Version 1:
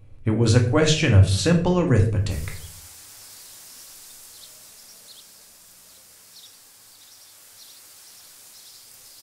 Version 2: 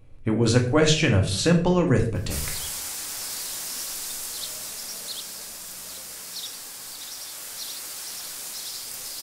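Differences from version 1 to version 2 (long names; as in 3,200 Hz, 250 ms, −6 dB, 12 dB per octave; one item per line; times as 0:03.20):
background +11.5 dB
master: add parametric band 96 Hz −9 dB 0.47 octaves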